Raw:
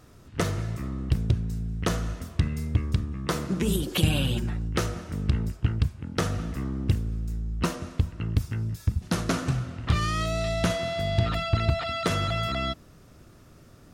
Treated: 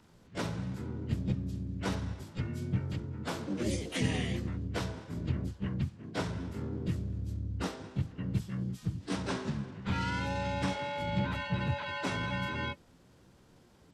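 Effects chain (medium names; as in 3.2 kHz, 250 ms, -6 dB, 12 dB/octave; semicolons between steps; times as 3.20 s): frequency axis rescaled in octaves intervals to 84%; harmony voices +7 st 0 dB; trim -8.5 dB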